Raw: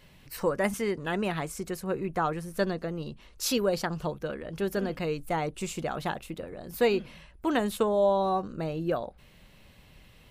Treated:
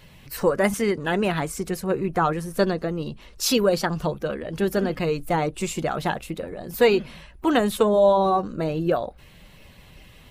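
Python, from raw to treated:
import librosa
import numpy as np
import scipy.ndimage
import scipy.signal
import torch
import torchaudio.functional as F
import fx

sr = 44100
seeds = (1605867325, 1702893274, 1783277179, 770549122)

y = fx.spec_quant(x, sr, step_db=15)
y = F.gain(torch.from_numpy(y), 7.0).numpy()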